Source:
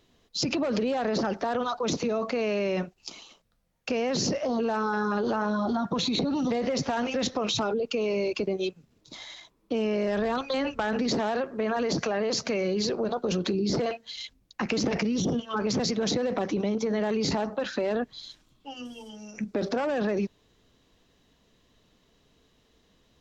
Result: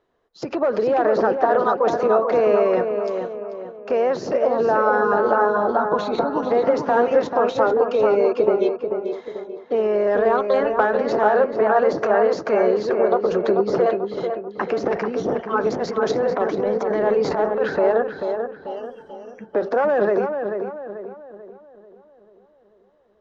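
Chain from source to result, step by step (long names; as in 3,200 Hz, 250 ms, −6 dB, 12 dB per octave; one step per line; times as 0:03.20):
low-pass filter 3,400 Hz 6 dB per octave
flat-topped bell 800 Hz +13 dB 2.7 octaves
0:15.69–0:17.77: transient designer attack −9 dB, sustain +4 dB
feedback echo with a low-pass in the loop 439 ms, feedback 58%, low-pass 2,000 Hz, level −4 dB
expander for the loud parts 1.5 to 1, over −33 dBFS
level −1 dB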